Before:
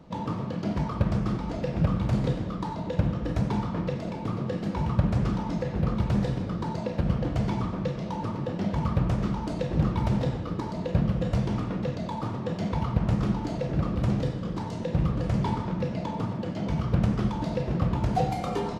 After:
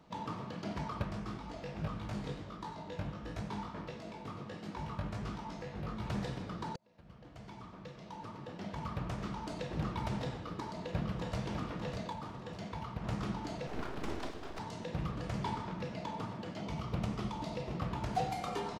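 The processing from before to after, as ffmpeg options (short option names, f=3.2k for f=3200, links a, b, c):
-filter_complex "[0:a]asplit=3[a][b][c];[a]afade=t=out:st=1.05:d=0.02[d];[b]flanger=delay=18.5:depth=2.1:speed=1.5,afade=t=in:st=1.05:d=0.02,afade=t=out:st=6.03:d=0.02[e];[c]afade=t=in:st=6.03:d=0.02[f];[d][e][f]amix=inputs=3:normalize=0,asplit=2[g][h];[h]afade=t=in:st=10.33:d=0.01,afade=t=out:st=11.43:d=0.01,aecho=0:1:600|1200|1800|2400|3000|3600|4200|4800:0.473151|0.283891|0.170334|0.102201|0.0613204|0.0367922|0.0220753|0.0132452[i];[g][i]amix=inputs=2:normalize=0,asettb=1/sr,asplit=3[j][k][l];[j]atrim=end=13.674[m];[k]atrim=start=13.67:end=14.59,asetpts=PTS-STARTPTS,afade=t=in:d=0.004:c=qsin,afade=t=out:st=0.916:d=0.004:c=qsin,aeval=exprs='abs(val(0))':c=same[n];[l]atrim=start=14.586[o];[m][n]acrossfade=d=0.004:c1=hsin:c2=qsin[p];[p][o]acrossfade=d=0.004:c1=qsin:c2=hsin,asettb=1/sr,asplit=3[q][r][s];[q]atrim=end=16.614[t];[r]atrim=start=16.61:end=17.8,asetpts=PTS-STARTPTS,afade=t=in:d=0.004:c=qsin,afade=t=out:st=1.186:d=0.004:c=qsin,equalizer=f=1.6k:t=o:w=0.3:g=-8[u];[s]atrim=start=17.796[v];[t][u]acrossfade=d=0.004:c1=hsin:c2=qsin[w];[w][v]acrossfade=d=0.004:c1=qsin:c2=hsin,asplit=4[x][y][z][aa];[x]atrim=end=6.76,asetpts=PTS-STARTPTS,afade=t=out:st=6.756:d=0.004:c=hsin[ab];[y]atrim=start=6.76:end=12.132,asetpts=PTS-STARTPTS,afade=t=in:d=2.79[ac];[z]atrim=start=12.128:end=13.042,asetpts=PTS-STARTPTS,volume=-4dB[ad];[aa]atrim=start=13.038[ae];[ab][ac]concat=n=2:v=0:a=1[af];[af][ad]acrossfade=d=0.004:c1=hsin:c2=hsin[ag];[ag][ae]acrossfade=d=0.004:c1=hsin:c2=hsin,lowshelf=f=480:g=-10,bandreject=f=530:w=12,volume=-3.5dB"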